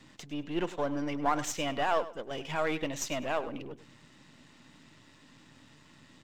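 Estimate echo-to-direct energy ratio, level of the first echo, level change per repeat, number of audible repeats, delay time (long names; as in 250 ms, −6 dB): −15.5 dB, −15.5 dB, −13.5 dB, 2, 101 ms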